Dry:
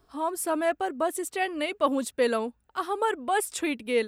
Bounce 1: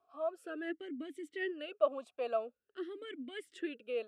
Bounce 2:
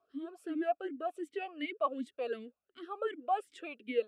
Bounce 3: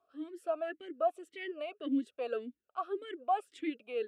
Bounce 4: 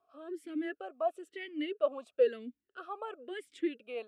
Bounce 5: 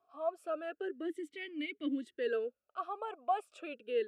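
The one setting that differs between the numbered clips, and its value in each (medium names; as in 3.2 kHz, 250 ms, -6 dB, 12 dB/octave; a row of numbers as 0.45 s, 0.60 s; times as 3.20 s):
talking filter, rate: 0.47 Hz, 2.7 Hz, 1.8 Hz, 1 Hz, 0.32 Hz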